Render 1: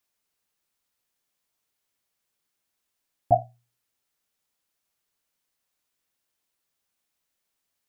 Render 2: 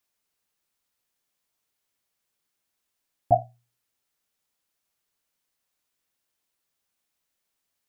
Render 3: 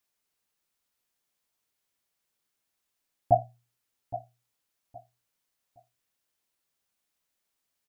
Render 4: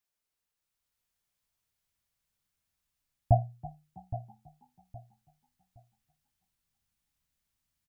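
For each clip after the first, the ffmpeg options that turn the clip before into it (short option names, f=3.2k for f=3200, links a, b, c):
-af anull
-af "aecho=1:1:817|1634|2451:0.188|0.049|0.0127,volume=-1.5dB"
-filter_complex "[0:a]asplit=5[a][b][c][d][e];[b]adelay=325,afreqshift=32,volume=-19dB[f];[c]adelay=650,afreqshift=64,volume=-25.7dB[g];[d]adelay=975,afreqshift=96,volume=-32.5dB[h];[e]adelay=1300,afreqshift=128,volume=-39.2dB[i];[a][f][g][h][i]amix=inputs=5:normalize=0,asubboost=boost=9:cutoff=140,dynaudnorm=f=530:g=3:m=4dB,volume=-6.5dB"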